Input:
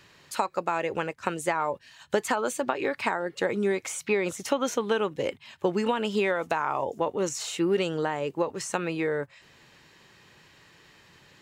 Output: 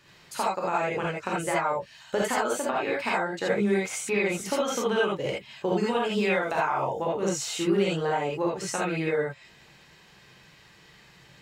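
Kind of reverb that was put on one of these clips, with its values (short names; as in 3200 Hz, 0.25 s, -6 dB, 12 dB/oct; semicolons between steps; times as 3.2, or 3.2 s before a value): non-linear reverb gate 0.1 s rising, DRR -5 dB; gain -4.5 dB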